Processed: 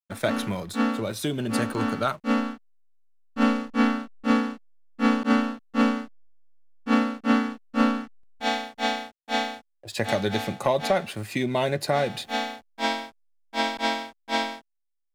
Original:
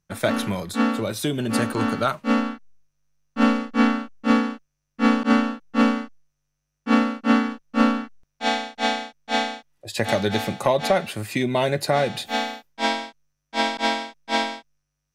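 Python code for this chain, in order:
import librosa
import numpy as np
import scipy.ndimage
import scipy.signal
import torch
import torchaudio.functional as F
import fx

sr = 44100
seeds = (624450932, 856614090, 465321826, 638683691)

y = fx.backlash(x, sr, play_db=-42.0)
y = y * 10.0 ** (-3.0 / 20.0)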